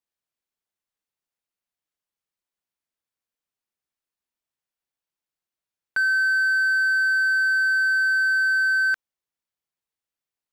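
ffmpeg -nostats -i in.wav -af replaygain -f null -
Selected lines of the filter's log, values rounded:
track_gain = +6.0 dB
track_peak = 0.109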